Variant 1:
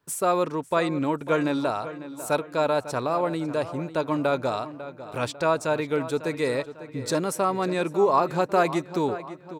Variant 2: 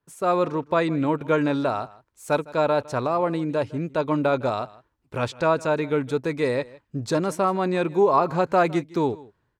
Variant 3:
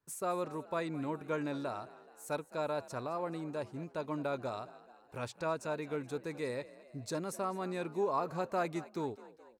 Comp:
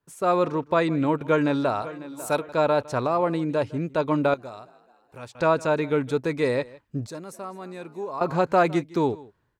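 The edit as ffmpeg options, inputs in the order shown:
-filter_complex "[2:a]asplit=2[s0][s1];[1:a]asplit=4[s2][s3][s4][s5];[s2]atrim=end=1.822[s6];[0:a]atrim=start=1.818:end=2.492[s7];[s3]atrim=start=2.488:end=4.342[s8];[s0]atrim=start=4.338:end=5.352[s9];[s4]atrim=start=5.348:end=7.072[s10];[s1]atrim=start=7.068:end=8.212[s11];[s5]atrim=start=8.208[s12];[s6][s7]acrossfade=d=0.004:c1=hsin:c2=hsin[s13];[s13][s8]acrossfade=d=0.004:c1=hsin:c2=hsin[s14];[s14][s9]acrossfade=d=0.004:c1=hsin:c2=hsin[s15];[s15][s10]acrossfade=d=0.004:c1=hsin:c2=hsin[s16];[s16][s11]acrossfade=d=0.004:c1=hsin:c2=hsin[s17];[s17][s12]acrossfade=d=0.004:c1=hsin:c2=hsin"

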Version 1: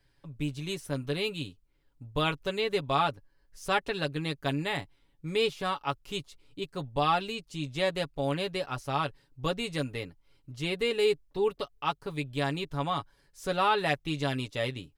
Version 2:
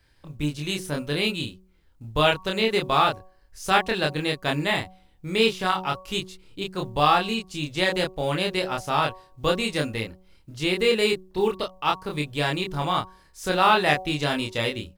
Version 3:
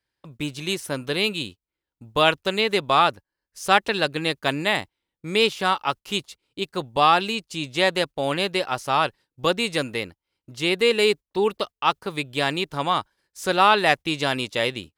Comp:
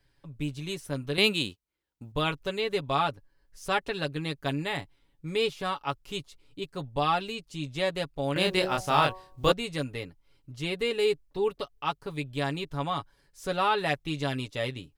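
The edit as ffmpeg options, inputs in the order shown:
-filter_complex "[0:a]asplit=3[s0][s1][s2];[s0]atrim=end=1.182[s3];[2:a]atrim=start=1.178:end=2.122[s4];[s1]atrim=start=2.118:end=8.362[s5];[1:a]atrim=start=8.358:end=9.522[s6];[s2]atrim=start=9.518[s7];[s3][s4]acrossfade=d=0.004:c1=hsin:c2=hsin[s8];[s8][s5]acrossfade=d=0.004:c1=hsin:c2=hsin[s9];[s9][s6]acrossfade=d=0.004:c1=hsin:c2=hsin[s10];[s10][s7]acrossfade=d=0.004:c1=hsin:c2=hsin"

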